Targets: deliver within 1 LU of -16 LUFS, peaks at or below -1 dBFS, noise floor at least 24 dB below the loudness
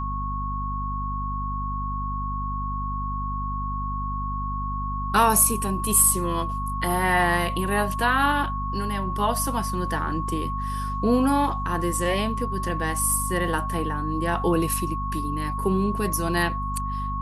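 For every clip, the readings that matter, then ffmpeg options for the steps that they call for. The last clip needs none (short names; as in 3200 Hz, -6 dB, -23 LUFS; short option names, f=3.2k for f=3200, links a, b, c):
hum 50 Hz; harmonics up to 250 Hz; hum level -27 dBFS; steady tone 1100 Hz; tone level -29 dBFS; loudness -24.5 LUFS; peak -5.0 dBFS; loudness target -16.0 LUFS
-> -af "bandreject=f=50:t=h:w=4,bandreject=f=100:t=h:w=4,bandreject=f=150:t=h:w=4,bandreject=f=200:t=h:w=4,bandreject=f=250:t=h:w=4"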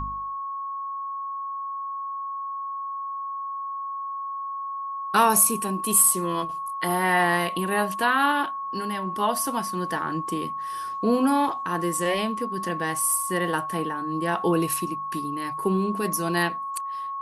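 hum none; steady tone 1100 Hz; tone level -29 dBFS
-> -af "bandreject=f=1.1k:w=30"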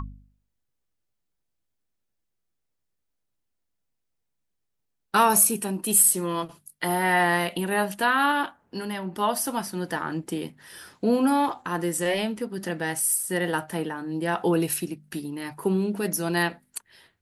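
steady tone none; loudness -24.5 LUFS; peak -5.0 dBFS; loudness target -16.0 LUFS
-> -af "volume=8.5dB,alimiter=limit=-1dB:level=0:latency=1"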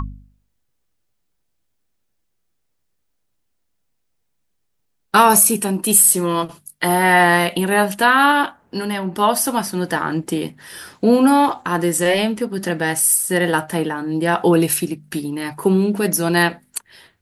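loudness -16.5 LUFS; peak -1.0 dBFS; noise floor -70 dBFS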